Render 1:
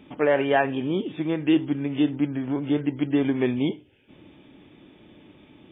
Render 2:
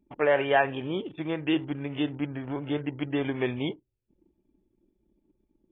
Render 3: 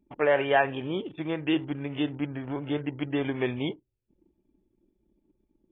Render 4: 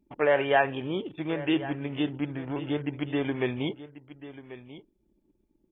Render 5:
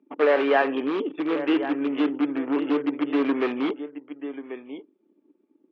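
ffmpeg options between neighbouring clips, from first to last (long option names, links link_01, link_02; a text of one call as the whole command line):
ffmpeg -i in.wav -af "anlmdn=1,equalizer=frequency=240:width_type=o:width=1.3:gain=-9" out.wav
ffmpeg -i in.wav -af anull out.wav
ffmpeg -i in.wav -af "aecho=1:1:1089:0.168" out.wav
ffmpeg -i in.wav -filter_complex "[0:a]asplit=2[link_01][link_02];[link_02]aeval=exprs='(mod(18.8*val(0)+1,2)-1)/18.8':channel_layout=same,volume=-3.5dB[link_03];[link_01][link_03]amix=inputs=2:normalize=0,highpass=frequency=250:width=0.5412,highpass=frequency=250:width=1.3066,equalizer=frequency=280:width_type=q:width=4:gain=8,equalizer=frequency=450:width_type=q:width=4:gain=6,equalizer=frequency=1200:width_type=q:width=4:gain=7,lowpass=frequency=3100:width=0.5412,lowpass=frequency=3100:width=1.3066" out.wav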